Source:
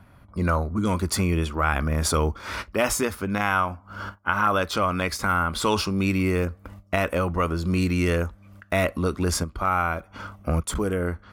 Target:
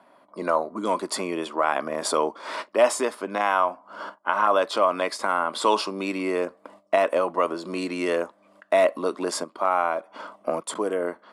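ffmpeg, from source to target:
-af "highpass=f=280:w=0.5412,highpass=f=280:w=1.3066,equalizer=f=630:t=q:w=4:g=8,equalizer=f=1k:t=q:w=4:g=6,equalizer=f=1.4k:t=q:w=4:g=-5,equalizer=f=2.4k:t=q:w=4:g=-4,equalizer=f=6.1k:t=q:w=4:g=-7,lowpass=f=9.6k:w=0.5412,lowpass=f=9.6k:w=1.3066"

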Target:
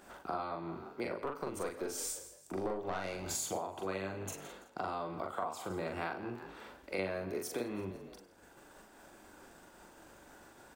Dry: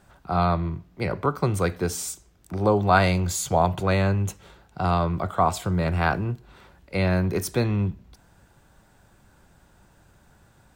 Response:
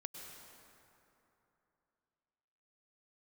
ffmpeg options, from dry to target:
-filter_complex "[0:a]agate=range=-33dB:threshold=-46dB:ratio=3:detection=peak,acompressor=mode=upward:threshold=-36dB:ratio=2.5,lowshelf=f=200:t=q:w=1.5:g=-13,asettb=1/sr,asplit=3[a][b][c];[a]atrim=end=1.144[d];[b]atrim=start=1.14:end=3.27,asetpts=PTS-STARTPTS,afade=t=in:d=0.004:c=qsin,afade=t=out:st=2.126:d=0.004:c=qsin,aeval=exprs='(tanh(4.47*val(0)+0.45)-tanh(0.45))/4.47':c=same[e];[c]atrim=start=3.266[f];[d][e]acrossfade=d=0.004:c1=hsin:c2=qsin[g];[g][f]acrossfade=d=0.004:c1=qsin:c2=hsin,asplit=4[h][i][j][k];[i]adelay=167,afreqshift=48,volume=-18.5dB[l];[j]adelay=334,afreqshift=96,volume=-27.1dB[m];[k]adelay=501,afreqshift=144,volume=-35.8dB[n];[h][l][m][n]amix=inputs=4:normalize=0,acompressor=threshold=-33dB:ratio=12,equalizer=f=3.9k:w=5.8:g=-2.5,asplit=2[o][p];[p]adelay=42,volume=-3dB[q];[o][q]amix=inputs=2:normalize=0[r];[1:a]atrim=start_sample=2205,afade=t=out:st=0.15:d=0.01,atrim=end_sample=7056[s];[r][s]afir=irnorm=-1:irlink=0,volume=2.5dB"

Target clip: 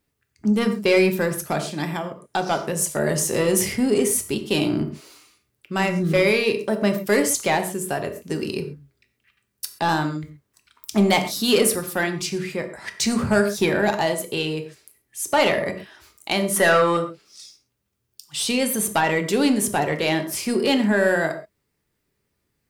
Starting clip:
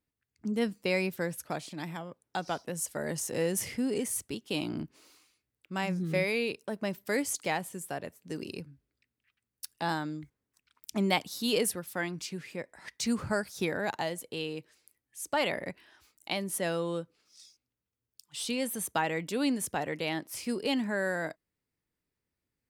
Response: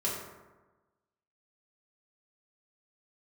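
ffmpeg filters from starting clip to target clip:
-filter_complex "[0:a]asettb=1/sr,asplit=3[a][b][c];[a]atrim=end=16.564[d];[b]atrim=start=16.56:end=16.97,asetpts=PTS-STARTPTS,afade=t=in:d=0.004:c=qsin,afade=t=out:st=0.406:d=0.004:c=qsin,equalizer=f=1.4k:t=o:w=1.8:g=13[e];[c]atrim=start=16.966[f];[d][e]acrossfade=d=0.004:c1=hsin:c2=qsin[g];[g][f]acrossfade=d=0.004:c1=qsin:c2=hsin,asoftclip=type=tanh:threshold=-22.5dB,asplit=2[h][i];[1:a]atrim=start_sample=2205,atrim=end_sample=6174[j];[i][j]afir=irnorm=-1:irlink=0,volume=-7dB[k];[h][k]amix=inputs=2:normalize=0,volume=8.5dB"

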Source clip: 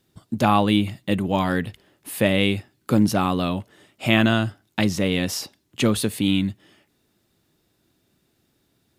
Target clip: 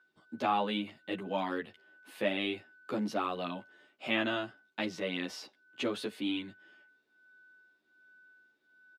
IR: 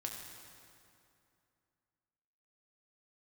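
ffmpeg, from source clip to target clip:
-filter_complex "[0:a]aeval=exprs='val(0)+0.00316*sin(2*PI*1500*n/s)':c=same,acrossover=split=240 5100:gain=0.0631 1 0.141[a][b][c];[a][b][c]amix=inputs=3:normalize=0,asplit=2[d][e];[e]adelay=11.3,afreqshift=1.3[f];[d][f]amix=inputs=2:normalize=1,volume=-7dB"

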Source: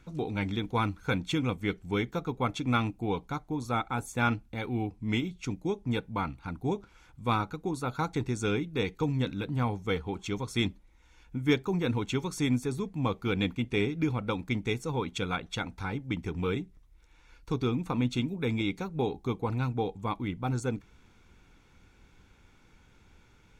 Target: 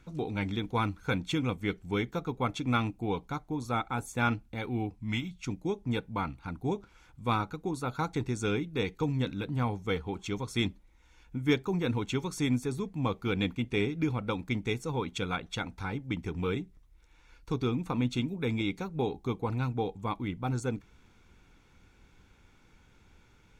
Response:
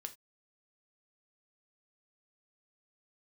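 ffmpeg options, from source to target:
-filter_complex "[0:a]asettb=1/sr,asplit=3[a][b][c];[a]atrim=end=4.954[d];[b]atrim=start=4.95:end=5.48,asetpts=PTS-STARTPTS,afade=t=in:d=0.004:c=qsin,afade=t=out:st=0.526:d=0.004:c=qsin,equalizer=f=410:t=o:w=0.78:g=-14.5[e];[c]atrim=start=5.476[f];[d][e]acrossfade=d=0.004:c1=hsin:c2=qsin[g];[g][f]acrossfade=d=0.004:c1=qsin:c2=hsin,volume=-1dB"

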